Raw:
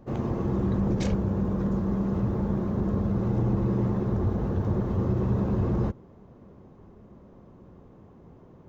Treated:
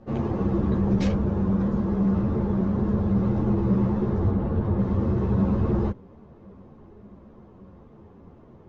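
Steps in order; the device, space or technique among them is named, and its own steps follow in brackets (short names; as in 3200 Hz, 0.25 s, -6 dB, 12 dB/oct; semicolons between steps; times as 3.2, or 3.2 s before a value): string-machine ensemble chorus (ensemble effect; LPF 5200 Hz 12 dB/oct); 4.31–4.79 air absorption 130 m; gain +5.5 dB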